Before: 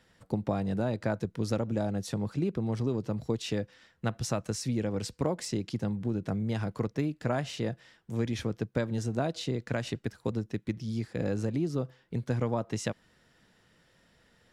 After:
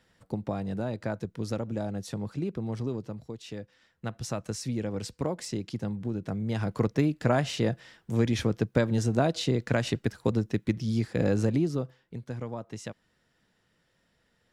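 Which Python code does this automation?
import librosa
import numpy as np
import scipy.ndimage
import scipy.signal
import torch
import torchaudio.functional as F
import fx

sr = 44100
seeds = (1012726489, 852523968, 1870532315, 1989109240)

y = fx.gain(x, sr, db=fx.line((2.93, -2.0), (3.31, -9.5), (4.48, -1.0), (6.36, -1.0), (6.85, 5.5), (11.53, 5.5), (12.19, -6.5)))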